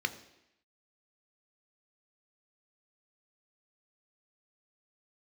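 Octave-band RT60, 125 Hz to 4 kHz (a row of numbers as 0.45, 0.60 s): 0.70, 0.85, 0.85, 0.85, 0.90, 0.85 s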